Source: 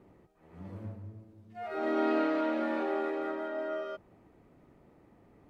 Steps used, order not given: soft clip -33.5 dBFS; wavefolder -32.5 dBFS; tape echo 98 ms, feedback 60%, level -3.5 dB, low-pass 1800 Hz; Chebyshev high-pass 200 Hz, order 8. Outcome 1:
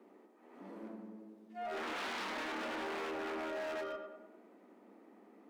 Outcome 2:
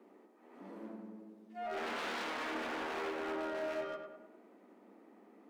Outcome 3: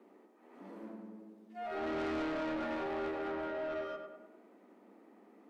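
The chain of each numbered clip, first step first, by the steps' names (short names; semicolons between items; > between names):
tape echo > wavefolder > Chebyshev high-pass > soft clip; wavefolder > Chebyshev high-pass > soft clip > tape echo; Chebyshev high-pass > tape echo > soft clip > wavefolder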